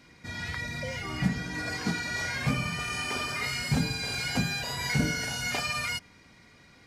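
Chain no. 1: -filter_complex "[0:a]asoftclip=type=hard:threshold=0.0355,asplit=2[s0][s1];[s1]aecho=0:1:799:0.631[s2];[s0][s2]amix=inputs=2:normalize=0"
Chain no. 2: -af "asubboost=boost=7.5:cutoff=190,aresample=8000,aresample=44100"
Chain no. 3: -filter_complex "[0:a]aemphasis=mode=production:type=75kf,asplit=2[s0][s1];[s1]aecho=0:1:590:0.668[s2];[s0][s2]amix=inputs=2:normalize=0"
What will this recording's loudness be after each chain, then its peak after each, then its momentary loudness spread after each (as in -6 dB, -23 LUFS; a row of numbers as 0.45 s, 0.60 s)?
-31.0 LUFS, -25.0 LUFS, -24.5 LUFS; -24.5 dBFS, -2.5 dBFS, -10.5 dBFS; 5 LU, 13 LU, 8 LU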